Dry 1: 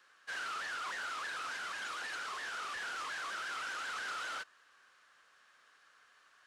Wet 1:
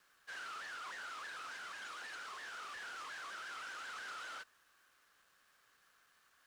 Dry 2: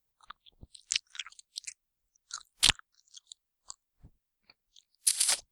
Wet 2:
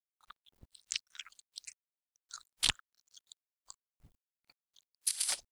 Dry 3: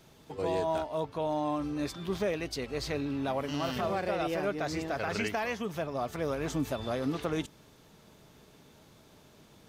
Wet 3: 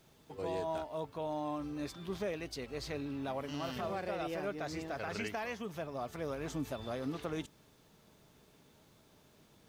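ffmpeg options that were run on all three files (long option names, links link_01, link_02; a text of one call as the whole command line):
ffmpeg -i in.wav -af "acrusher=bits=10:mix=0:aa=0.000001,volume=-6.5dB" out.wav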